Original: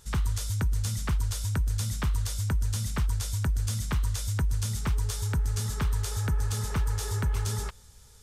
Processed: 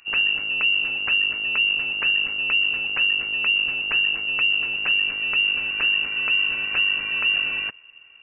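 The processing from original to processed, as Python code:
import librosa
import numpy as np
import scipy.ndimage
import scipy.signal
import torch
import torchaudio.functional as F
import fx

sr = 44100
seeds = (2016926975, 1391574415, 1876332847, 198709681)

y = fx.rattle_buzz(x, sr, strikes_db=-39.0, level_db=-34.0)
y = fx.freq_invert(y, sr, carrier_hz=2800)
y = y * 10.0 ** (3.5 / 20.0)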